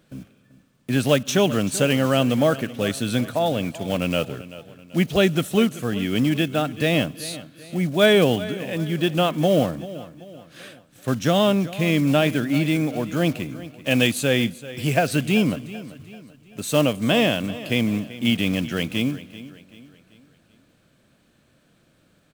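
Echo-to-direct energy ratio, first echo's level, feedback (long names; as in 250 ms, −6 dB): −15.5 dB, −16.5 dB, 43%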